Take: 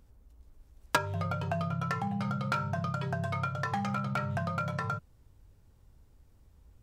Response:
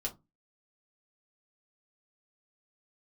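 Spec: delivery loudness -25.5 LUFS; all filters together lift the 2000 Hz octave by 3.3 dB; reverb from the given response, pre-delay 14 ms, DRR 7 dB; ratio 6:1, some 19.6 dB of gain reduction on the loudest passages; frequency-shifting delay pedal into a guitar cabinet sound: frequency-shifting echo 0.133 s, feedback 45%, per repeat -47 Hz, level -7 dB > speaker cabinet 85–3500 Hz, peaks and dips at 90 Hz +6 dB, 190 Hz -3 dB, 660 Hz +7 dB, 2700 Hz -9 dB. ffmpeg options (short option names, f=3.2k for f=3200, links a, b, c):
-filter_complex "[0:a]equalizer=f=2k:t=o:g=5.5,acompressor=threshold=-42dB:ratio=6,asplit=2[a][b];[1:a]atrim=start_sample=2205,adelay=14[c];[b][c]afir=irnorm=-1:irlink=0,volume=-8dB[d];[a][d]amix=inputs=2:normalize=0,asplit=6[e][f][g][h][i][j];[f]adelay=133,afreqshift=-47,volume=-7dB[k];[g]adelay=266,afreqshift=-94,volume=-13.9dB[l];[h]adelay=399,afreqshift=-141,volume=-20.9dB[m];[i]adelay=532,afreqshift=-188,volume=-27.8dB[n];[j]adelay=665,afreqshift=-235,volume=-34.7dB[o];[e][k][l][m][n][o]amix=inputs=6:normalize=0,highpass=85,equalizer=f=90:t=q:w=4:g=6,equalizer=f=190:t=q:w=4:g=-3,equalizer=f=660:t=q:w=4:g=7,equalizer=f=2.7k:t=q:w=4:g=-9,lowpass=f=3.5k:w=0.5412,lowpass=f=3.5k:w=1.3066,volume=17.5dB"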